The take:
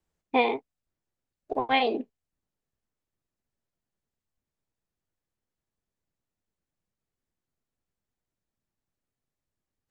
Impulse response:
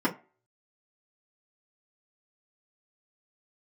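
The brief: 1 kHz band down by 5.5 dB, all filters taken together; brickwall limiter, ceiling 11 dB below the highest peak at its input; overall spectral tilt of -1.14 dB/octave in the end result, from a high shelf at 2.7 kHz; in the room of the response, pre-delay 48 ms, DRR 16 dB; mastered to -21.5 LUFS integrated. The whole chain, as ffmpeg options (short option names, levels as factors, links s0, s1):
-filter_complex "[0:a]equalizer=f=1000:t=o:g=-9,highshelf=f=2700:g=8,alimiter=limit=0.1:level=0:latency=1,asplit=2[s0][s1];[1:a]atrim=start_sample=2205,adelay=48[s2];[s1][s2]afir=irnorm=-1:irlink=0,volume=0.0447[s3];[s0][s3]amix=inputs=2:normalize=0,volume=3.76"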